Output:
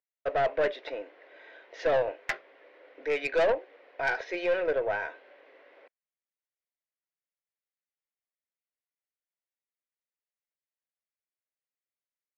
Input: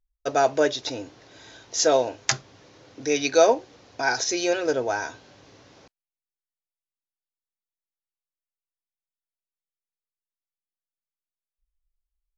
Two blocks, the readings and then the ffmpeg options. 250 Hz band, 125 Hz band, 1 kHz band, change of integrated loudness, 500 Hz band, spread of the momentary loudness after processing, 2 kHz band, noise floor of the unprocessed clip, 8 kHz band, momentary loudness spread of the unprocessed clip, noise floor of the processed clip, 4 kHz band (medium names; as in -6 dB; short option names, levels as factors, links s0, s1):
-12.5 dB, -9.0 dB, -7.0 dB, -6.5 dB, -5.0 dB, 13 LU, -3.0 dB, under -85 dBFS, no reading, 13 LU, under -85 dBFS, -14.5 dB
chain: -af "highpass=f=410:w=0.5412,highpass=f=410:w=1.3066,equalizer=f=550:t=q:w=4:g=5,equalizer=f=840:t=q:w=4:g=-5,equalizer=f=1200:t=q:w=4:g=-4,equalizer=f=2000:t=q:w=4:g=6,lowpass=f=2600:w=0.5412,lowpass=f=2600:w=1.3066,aeval=exprs='(tanh(8.91*val(0)+0.2)-tanh(0.2))/8.91':c=same,volume=0.841"